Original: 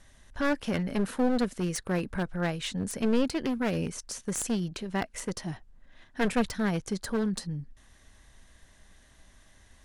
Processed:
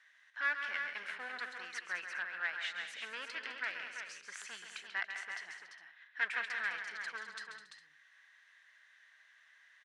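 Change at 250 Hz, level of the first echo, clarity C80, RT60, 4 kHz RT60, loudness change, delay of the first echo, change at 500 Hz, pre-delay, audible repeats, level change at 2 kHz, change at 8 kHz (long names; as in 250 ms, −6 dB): −37.5 dB, −8.5 dB, no reverb audible, no reverb audible, no reverb audible, −9.0 dB, 136 ms, −24.0 dB, no reverb audible, 5, +2.5 dB, −16.0 dB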